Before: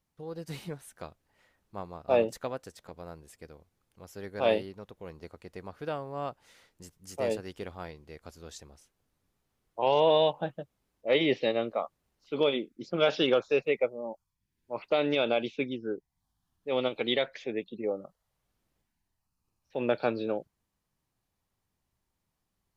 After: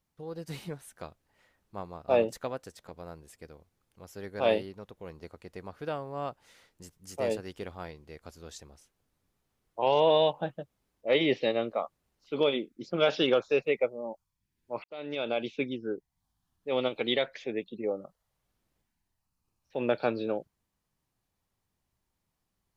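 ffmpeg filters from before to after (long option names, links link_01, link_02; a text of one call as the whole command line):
ffmpeg -i in.wav -filter_complex "[0:a]asplit=2[link_01][link_02];[link_01]atrim=end=14.84,asetpts=PTS-STARTPTS,afade=type=out:start_time=14.836:duration=0.004:curve=hsin[link_03];[link_02]atrim=start=14.84,asetpts=PTS-STARTPTS,afade=type=in:duration=0.72[link_04];[link_03][link_04]concat=n=2:v=0:a=1" out.wav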